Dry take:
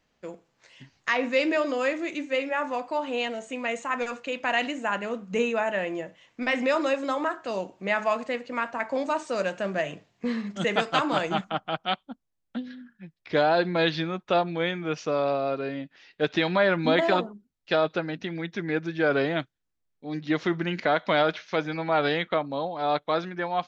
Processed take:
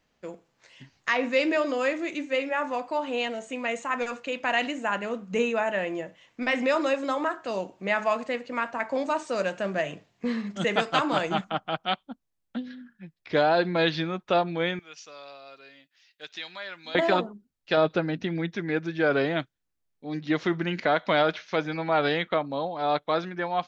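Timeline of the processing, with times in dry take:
14.79–16.95 s: pre-emphasis filter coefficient 0.97
17.77–18.52 s: bass shelf 440 Hz +5.5 dB

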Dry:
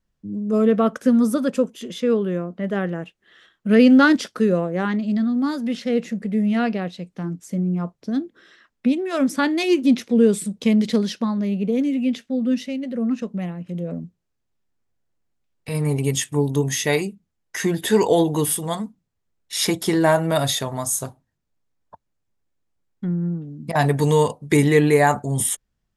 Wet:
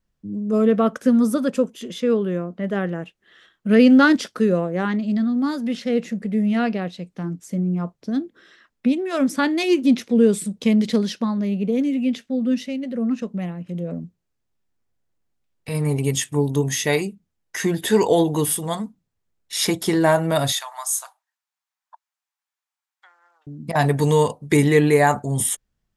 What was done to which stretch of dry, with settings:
20.52–23.47 s: steep high-pass 810 Hz

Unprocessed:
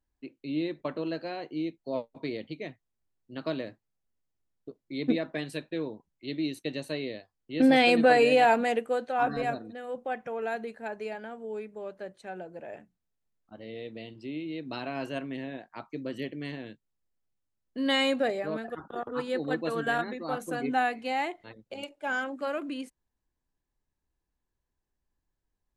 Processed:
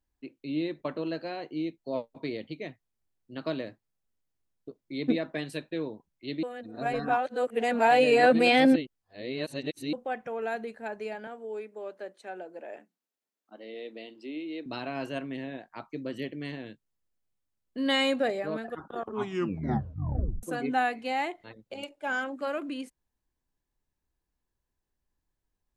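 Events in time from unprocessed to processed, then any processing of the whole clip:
6.43–9.93 s: reverse
11.27–14.66 s: high-pass 250 Hz 24 dB/octave
18.96 s: tape stop 1.47 s

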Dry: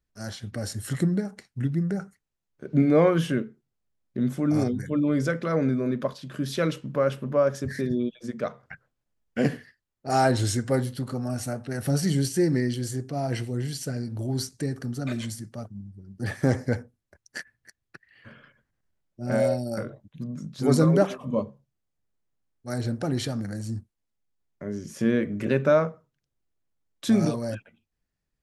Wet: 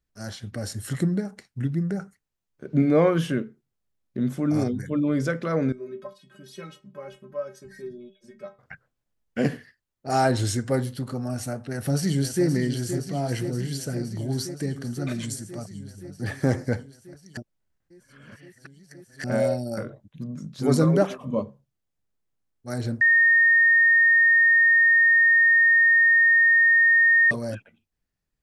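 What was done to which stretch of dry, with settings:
5.72–8.59 s: inharmonic resonator 190 Hz, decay 0.24 s, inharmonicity 0.008
11.68–12.46 s: echo throw 520 ms, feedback 80%, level -9 dB
15.23–15.84 s: peaking EQ 7.8 kHz +7.5 dB
17.37–19.24 s: reverse
23.01–27.31 s: bleep 1.84 kHz -14 dBFS

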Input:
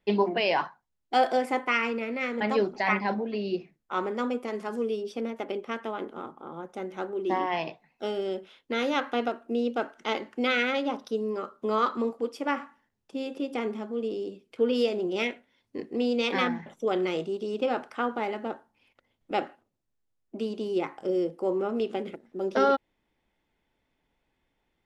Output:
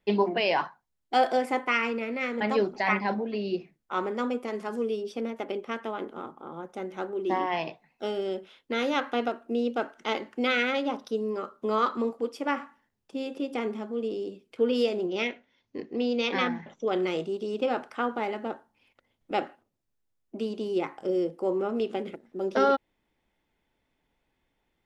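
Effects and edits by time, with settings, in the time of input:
15.06–16.93 s: elliptic low-pass 6.6 kHz

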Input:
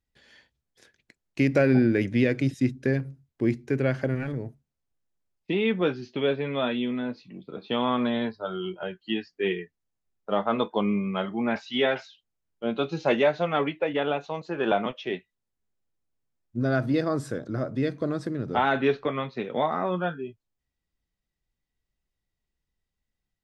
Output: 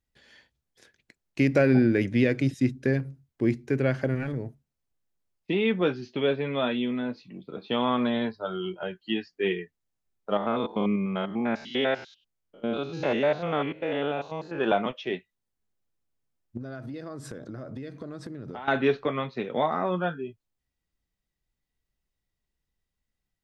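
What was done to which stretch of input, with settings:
10.37–14.59 s: spectrogram pixelated in time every 100 ms
16.57–18.68 s: compression 10:1, threshold -34 dBFS

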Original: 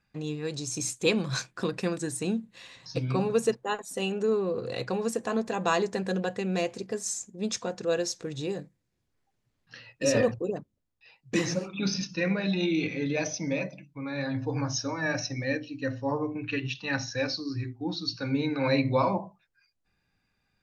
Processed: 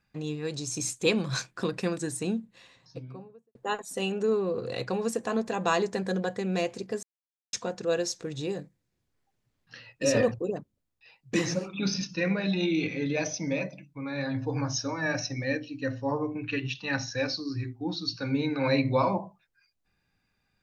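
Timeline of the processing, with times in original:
2.06–3.55 s: studio fade out
6.00–6.44 s: band-stop 2.7 kHz, Q 6
7.03–7.53 s: mute

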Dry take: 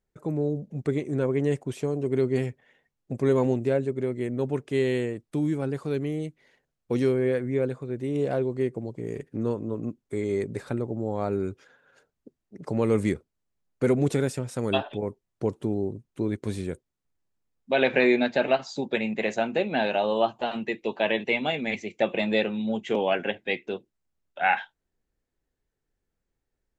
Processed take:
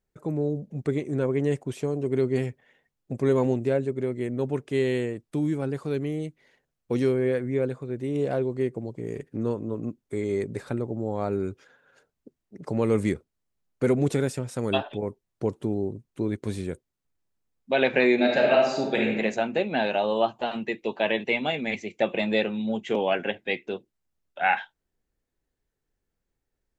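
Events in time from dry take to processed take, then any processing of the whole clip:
18.14–19.11 s: reverb throw, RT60 0.96 s, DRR -1 dB

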